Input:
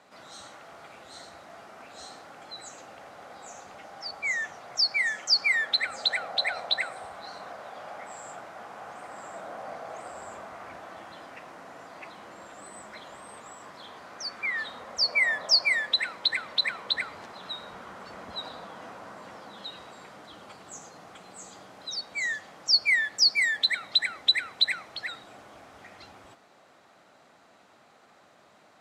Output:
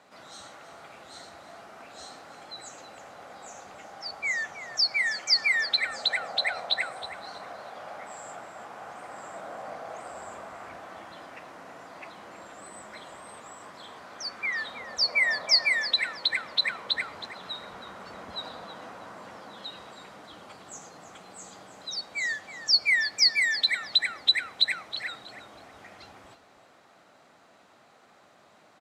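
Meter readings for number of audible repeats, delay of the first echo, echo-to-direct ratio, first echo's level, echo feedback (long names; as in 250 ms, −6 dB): 2, 320 ms, −13.5 dB, −13.5 dB, 24%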